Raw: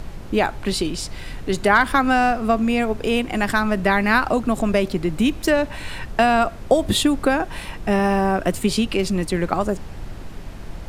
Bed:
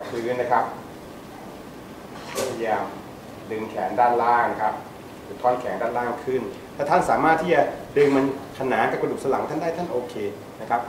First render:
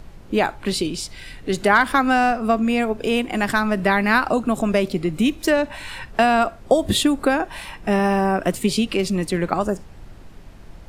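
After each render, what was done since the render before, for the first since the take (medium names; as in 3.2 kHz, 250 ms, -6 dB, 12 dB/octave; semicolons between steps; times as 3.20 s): noise print and reduce 8 dB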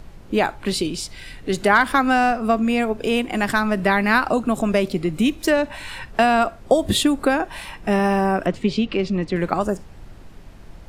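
8.46–9.36 s: distance through air 170 m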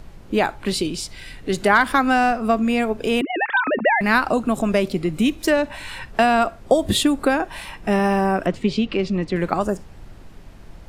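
3.21–4.01 s: formants replaced by sine waves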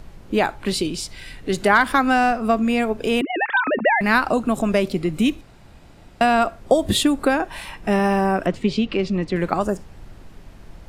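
5.41–6.21 s: room tone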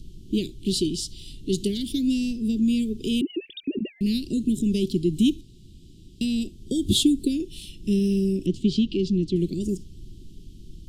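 Chebyshev band-stop 370–3100 Hz, order 4; treble shelf 10 kHz -4 dB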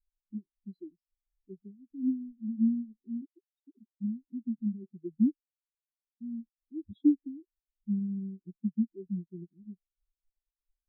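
compression 1.5:1, threshold -32 dBFS, peak gain reduction 6.5 dB; spectral contrast expander 4:1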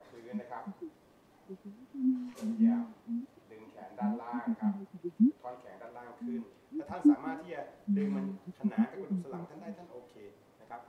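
add bed -23.5 dB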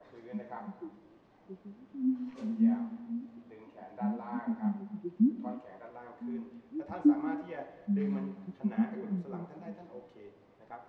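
distance through air 150 m; gated-style reverb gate 340 ms flat, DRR 11.5 dB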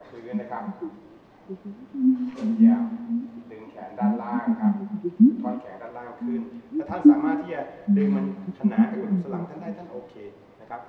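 trim +10.5 dB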